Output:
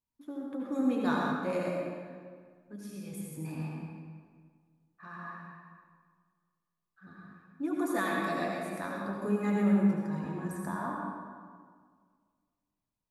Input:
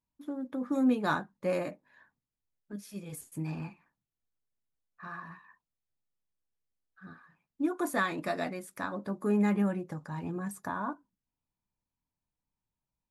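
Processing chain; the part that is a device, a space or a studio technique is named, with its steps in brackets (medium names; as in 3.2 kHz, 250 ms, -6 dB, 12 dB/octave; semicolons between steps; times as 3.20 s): stairwell (reverberation RT60 1.8 s, pre-delay 67 ms, DRR -2.5 dB); trim -4.5 dB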